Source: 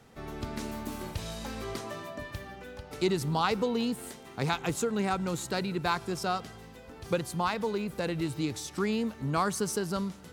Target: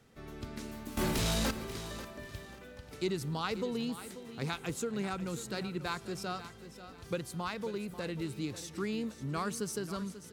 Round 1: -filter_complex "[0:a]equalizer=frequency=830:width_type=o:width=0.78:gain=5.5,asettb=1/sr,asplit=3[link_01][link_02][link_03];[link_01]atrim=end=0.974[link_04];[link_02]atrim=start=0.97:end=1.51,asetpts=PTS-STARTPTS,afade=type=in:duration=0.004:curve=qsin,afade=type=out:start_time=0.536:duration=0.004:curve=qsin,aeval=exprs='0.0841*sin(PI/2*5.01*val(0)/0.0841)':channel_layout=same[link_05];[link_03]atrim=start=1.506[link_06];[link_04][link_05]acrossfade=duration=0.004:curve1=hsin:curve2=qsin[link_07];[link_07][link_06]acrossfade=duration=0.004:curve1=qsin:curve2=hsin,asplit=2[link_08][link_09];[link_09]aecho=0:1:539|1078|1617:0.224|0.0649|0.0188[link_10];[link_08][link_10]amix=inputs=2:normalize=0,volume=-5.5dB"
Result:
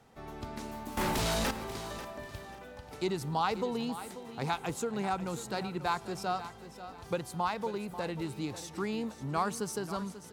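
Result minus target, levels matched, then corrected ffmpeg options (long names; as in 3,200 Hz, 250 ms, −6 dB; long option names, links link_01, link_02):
1,000 Hz band +5.5 dB
-filter_complex "[0:a]equalizer=frequency=830:width_type=o:width=0.78:gain=-6,asettb=1/sr,asplit=3[link_01][link_02][link_03];[link_01]atrim=end=0.974[link_04];[link_02]atrim=start=0.97:end=1.51,asetpts=PTS-STARTPTS,afade=type=in:duration=0.004:curve=qsin,afade=type=out:start_time=0.536:duration=0.004:curve=qsin,aeval=exprs='0.0841*sin(PI/2*5.01*val(0)/0.0841)':channel_layout=same[link_05];[link_03]atrim=start=1.506[link_06];[link_04][link_05]acrossfade=duration=0.004:curve1=hsin:curve2=qsin[link_07];[link_07][link_06]acrossfade=duration=0.004:curve1=qsin:curve2=hsin,asplit=2[link_08][link_09];[link_09]aecho=0:1:539|1078|1617:0.224|0.0649|0.0188[link_10];[link_08][link_10]amix=inputs=2:normalize=0,volume=-5.5dB"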